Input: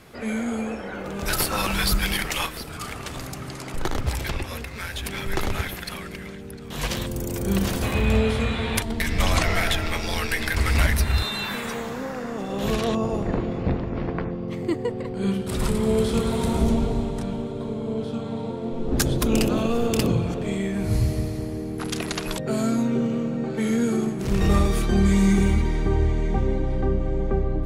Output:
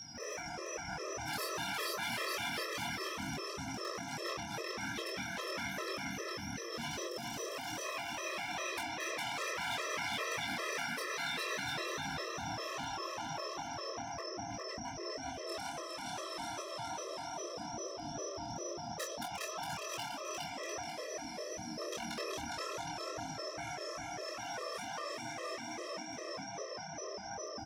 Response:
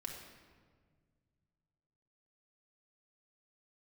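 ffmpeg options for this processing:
-filter_complex "[0:a]aeval=exprs='val(0)+0.0316*sin(2*PI*5600*n/s)':c=same,flanger=delay=17.5:depth=7.7:speed=2.4,tremolo=f=280:d=0.889,asplit=2[a][b];[b]aecho=0:1:410|697|897.9|1039|1137:0.631|0.398|0.251|0.158|0.1[c];[a][c]amix=inputs=2:normalize=0,acompressor=threshold=-22dB:ratio=6,highshelf=f=4.9k:g=-11,afftfilt=real='re*lt(hypot(re,im),0.0794)':imag='im*lt(hypot(re,im),0.0794)':win_size=1024:overlap=0.75,volume=31.5dB,asoftclip=hard,volume=-31.5dB,highpass=86,asplit=2[d][e];[e]adelay=26,volume=-5dB[f];[d][f]amix=inputs=2:normalize=0,afftfilt=real='re*gt(sin(2*PI*2.5*pts/sr)*(1-2*mod(floor(b*sr/1024/340),2)),0)':imag='im*gt(sin(2*PI*2.5*pts/sr)*(1-2*mod(floor(b*sr/1024/340),2)),0)':win_size=1024:overlap=0.75,volume=1dB"

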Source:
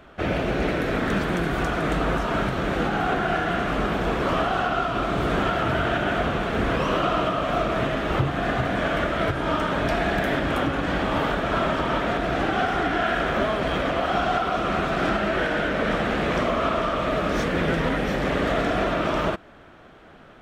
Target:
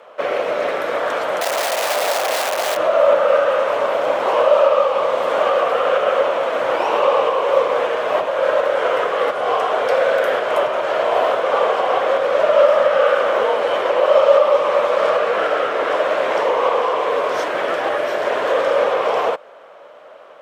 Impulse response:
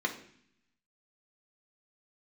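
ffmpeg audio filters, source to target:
-filter_complex "[0:a]asettb=1/sr,asplit=3[a][b][c];[a]atrim=end=1.414[d];[b]atrim=start=1.41:end=2.77,asetpts=PTS-STARTPTS,afade=t=in:d=0.004:c=qsin,afade=t=out:st=1.356:d=0.004:c=qsin,aeval=exprs='(mod(10.6*val(0)+1,2)-1)/10.6':c=same[e];[c]atrim=start=2.766[f];[d][e]acrossfade=d=0.004:c1=hsin:c2=qsin[g];[g][f]acrossfade=d=0.004:c1=qsin:c2=hsin,afreqshift=-170,highpass=f=600:t=q:w=4.9,volume=3dB"

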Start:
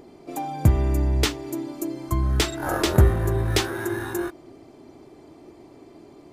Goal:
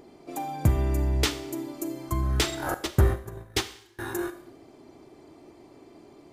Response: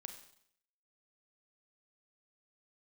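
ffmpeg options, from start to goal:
-filter_complex "[0:a]asettb=1/sr,asplit=3[a][b][c];[a]atrim=end=2.744[d];[b]atrim=start=2.74:end=3.99,asetpts=PTS-STARTPTS,afade=t=in:d=0.004:c=qsin,afade=t=out:st=1.246:d=0.004:c=qsin,agate=range=-32dB:threshold=-19dB:ratio=16:detection=peak[e];[c]atrim=start=3.986[f];[d][e]acrossfade=d=0.004:c1=hsin:c2=qsin[g];[g][f]acrossfade=d=0.004:c1=qsin:c2=hsin,asplit=2[h][i];[i]lowshelf=f=440:g=-7[j];[1:a]atrim=start_sample=2205[k];[j][k]afir=irnorm=-1:irlink=0,volume=6dB[l];[h][l]amix=inputs=2:normalize=0,volume=-8dB"

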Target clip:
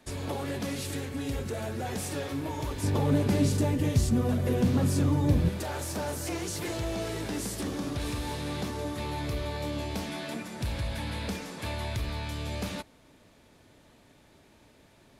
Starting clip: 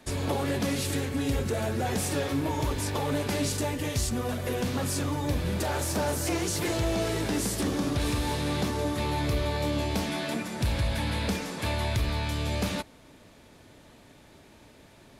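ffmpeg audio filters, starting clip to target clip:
-filter_complex "[0:a]asettb=1/sr,asplit=3[a][b][c];[a]atrim=end=2.834[d];[b]atrim=start=2.83:end=5.49,asetpts=PTS-STARTPTS,afade=t=in:d=0.004:c=qsin,afade=t=out:st=2.656:d=0.004:c=qsin,equalizer=f=150:w=0.36:g=12.5[e];[c]atrim=start=5.486[f];[d][e]acrossfade=d=0.004:c1=hsin:c2=qsin[g];[g][f]acrossfade=d=0.004:c1=qsin:c2=hsin,volume=-5dB"

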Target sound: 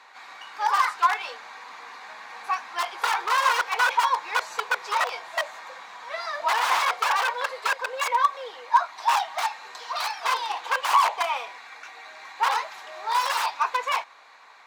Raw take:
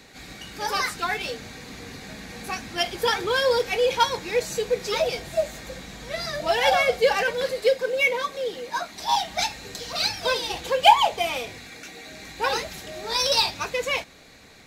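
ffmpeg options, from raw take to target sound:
-af "aeval=exprs='(mod(7.5*val(0)+1,2)-1)/7.5':c=same,highpass=f=1k:t=q:w=4.6,aemphasis=mode=reproduction:type=75kf"

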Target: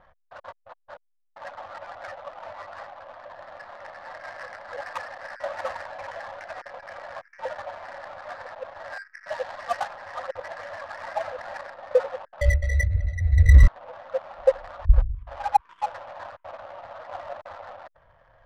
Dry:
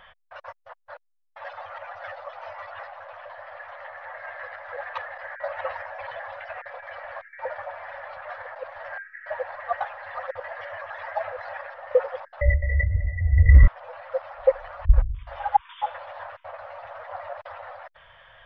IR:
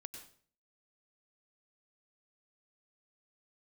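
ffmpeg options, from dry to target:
-filter_complex "[0:a]adynamicsmooth=sensitivity=6:basefreq=640,asplit=3[a][b][c];[a]afade=t=out:st=9.23:d=0.02[d];[b]adynamicequalizer=threshold=0.01:dfrequency=2300:dqfactor=0.7:tfrequency=2300:tqfactor=0.7:attack=5:release=100:ratio=0.375:range=2.5:mode=boostabove:tftype=highshelf,afade=t=in:st=9.23:d=0.02,afade=t=out:st=9.86:d=0.02[e];[c]afade=t=in:st=9.86:d=0.02[f];[d][e][f]amix=inputs=3:normalize=0"

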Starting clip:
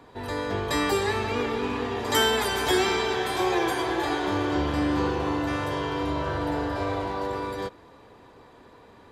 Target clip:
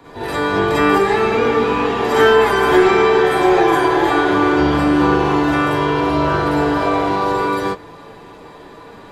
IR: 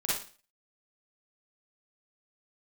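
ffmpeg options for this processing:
-filter_complex "[0:a]acrossover=split=120|1100|2200[a][b][c][d];[d]acompressor=threshold=-45dB:ratio=8[e];[a][b][c][e]amix=inputs=4:normalize=0,asoftclip=type=tanh:threshold=-19dB[f];[1:a]atrim=start_sample=2205,atrim=end_sample=3528[g];[f][g]afir=irnorm=-1:irlink=0,volume=7dB"

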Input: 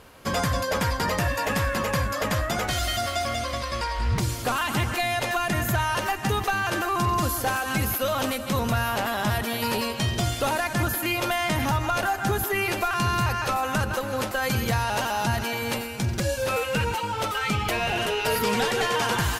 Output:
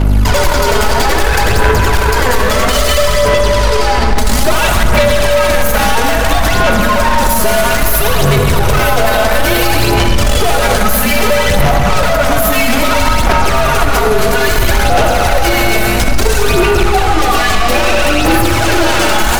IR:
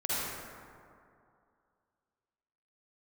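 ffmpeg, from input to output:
-filter_complex "[0:a]equalizer=f=750:t=o:w=0.21:g=6,afreqshift=-120,aeval=exprs='val(0)+0.0178*(sin(2*PI*50*n/s)+sin(2*PI*2*50*n/s)/2+sin(2*PI*3*50*n/s)/3+sin(2*PI*4*50*n/s)/4+sin(2*PI*5*50*n/s)/5)':c=same,aeval=exprs='(tanh(39.8*val(0)+0.5)-tanh(0.5))/39.8':c=same,aphaser=in_gain=1:out_gain=1:delay=4.7:decay=0.58:speed=0.6:type=sinusoidal,asplit=2[a][b];[1:a]atrim=start_sample=2205[c];[b][c]afir=irnorm=-1:irlink=0,volume=-9.5dB[d];[a][d]amix=inputs=2:normalize=0,alimiter=level_in=23.5dB:limit=-1dB:release=50:level=0:latency=1,volume=-1dB"

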